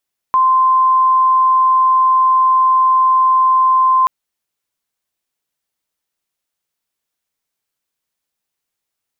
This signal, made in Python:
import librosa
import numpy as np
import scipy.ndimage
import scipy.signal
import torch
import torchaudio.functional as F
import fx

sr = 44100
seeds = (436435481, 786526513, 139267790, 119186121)

y = 10.0 ** (-8.5 / 20.0) * np.sin(2.0 * np.pi * (1040.0 * (np.arange(round(3.73 * sr)) / sr)))